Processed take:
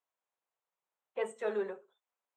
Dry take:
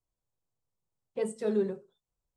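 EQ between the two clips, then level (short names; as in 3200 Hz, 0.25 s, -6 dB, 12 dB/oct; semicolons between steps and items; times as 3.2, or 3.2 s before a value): running mean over 9 samples; HPF 830 Hz 12 dB/oct; +7.5 dB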